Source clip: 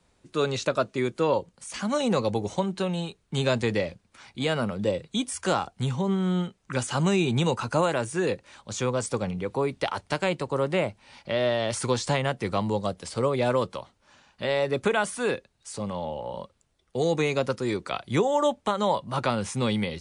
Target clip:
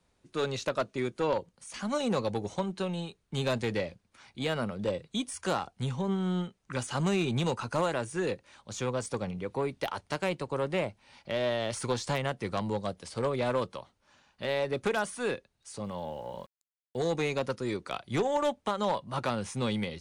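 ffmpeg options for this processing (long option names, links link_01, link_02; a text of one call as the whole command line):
ffmpeg -i in.wav -filter_complex "[0:a]bandreject=frequency=7600:width=17,aeval=exprs='0.251*(cos(1*acos(clip(val(0)/0.251,-1,1)))-cos(1*PI/2))+0.0355*(cos(4*acos(clip(val(0)/0.251,-1,1)))-cos(4*PI/2))+0.0251*(cos(5*acos(clip(val(0)/0.251,-1,1)))-cos(5*PI/2))+0.0224*(cos(6*acos(clip(val(0)/0.251,-1,1)))-cos(6*PI/2))+0.0178*(cos(7*acos(clip(val(0)/0.251,-1,1)))-cos(7*PI/2))':channel_layout=same,asettb=1/sr,asplit=3[link_01][link_02][link_03];[link_01]atrim=end=15.844[link_04];[link_02]atrim=start=15.84:end=17.02,asetpts=PTS-STARTPTS,afade=type=in:duration=0.004:curve=qsin,afade=type=out:start_time=1.176:duration=0.004:curve=qsin,aeval=exprs='val(0)*gte(abs(val(0)),0.00282)':channel_layout=same[link_05];[link_03]atrim=start=17.016[link_06];[link_04][link_05]acrossfade=duration=0.004:curve1=hsin:curve2=qsin[link_07];[link_07][link_06]acrossfade=duration=0.004:curve1=qsin:curve2=hsin,volume=-6dB" out.wav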